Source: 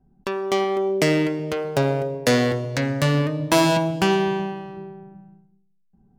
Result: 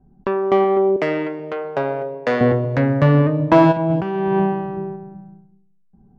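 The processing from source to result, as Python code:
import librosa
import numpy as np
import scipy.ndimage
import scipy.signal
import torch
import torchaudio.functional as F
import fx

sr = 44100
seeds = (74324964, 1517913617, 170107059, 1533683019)

y = fx.highpass(x, sr, hz=900.0, slope=6, at=(0.96, 2.41))
y = fx.over_compress(y, sr, threshold_db=-25.0, ratio=-1.0, at=(3.71, 4.95), fade=0.02)
y = scipy.signal.sosfilt(scipy.signal.butter(2, 1400.0, 'lowpass', fs=sr, output='sos'), y)
y = y * 10.0 ** (6.5 / 20.0)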